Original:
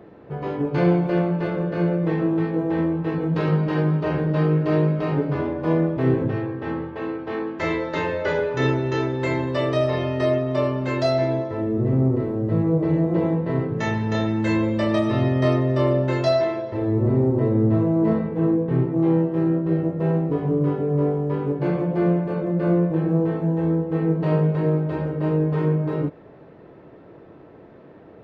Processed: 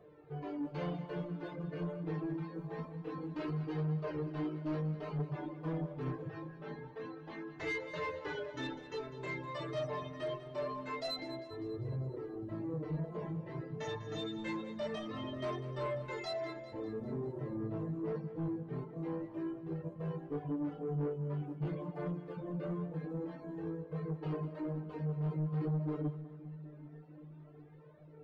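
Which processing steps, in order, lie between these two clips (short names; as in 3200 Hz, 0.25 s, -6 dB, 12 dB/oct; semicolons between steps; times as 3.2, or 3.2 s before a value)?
resonator 150 Hz, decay 0.46 s, harmonics all, mix 90%; flange 0.25 Hz, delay 1.7 ms, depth 5.2 ms, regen -10%; reverb removal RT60 1.4 s; soft clip -34 dBFS, distortion -12 dB; split-band echo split 300 Hz, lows 0.779 s, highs 0.199 s, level -13.5 dB; gain +3 dB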